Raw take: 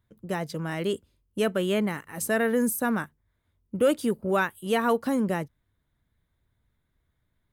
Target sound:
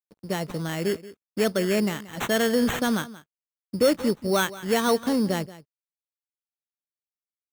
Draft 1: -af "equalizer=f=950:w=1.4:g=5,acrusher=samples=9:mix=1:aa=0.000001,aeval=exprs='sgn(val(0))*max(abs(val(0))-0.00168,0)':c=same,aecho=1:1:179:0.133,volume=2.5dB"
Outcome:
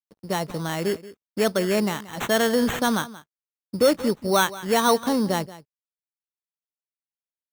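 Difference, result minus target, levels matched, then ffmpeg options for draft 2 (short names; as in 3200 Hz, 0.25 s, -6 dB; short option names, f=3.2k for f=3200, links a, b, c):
1000 Hz band +3.5 dB
-af "equalizer=f=950:w=1.4:g=-2.5,acrusher=samples=9:mix=1:aa=0.000001,aeval=exprs='sgn(val(0))*max(abs(val(0))-0.00168,0)':c=same,aecho=1:1:179:0.133,volume=2.5dB"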